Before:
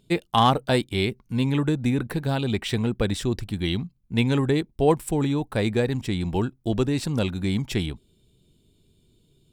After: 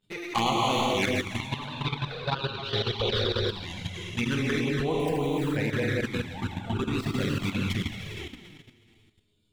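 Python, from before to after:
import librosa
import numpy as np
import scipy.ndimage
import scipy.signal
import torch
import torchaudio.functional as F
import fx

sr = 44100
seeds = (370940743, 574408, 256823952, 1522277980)

y = fx.tracing_dist(x, sr, depth_ms=0.14)
y = fx.curve_eq(y, sr, hz=(100.0, 170.0, 280.0, 400.0, 970.0, 1900.0, 4200.0, 7900.0), db=(0, -4, -13, 5, 9, -6, 12, -16), at=(1.39, 3.45), fade=0.02)
y = fx.echo_feedback(y, sr, ms=176, feedback_pct=54, wet_db=-10)
y = fx.rev_gated(y, sr, seeds[0], gate_ms=490, shape='flat', drr_db=-3.5)
y = fx.env_flanger(y, sr, rest_ms=10.0, full_db=-12.5)
y = fx.level_steps(y, sr, step_db=11)
y = fx.peak_eq(y, sr, hz=1900.0, db=9.5, octaves=2.2)
y = y * librosa.db_to_amplitude(-6.0)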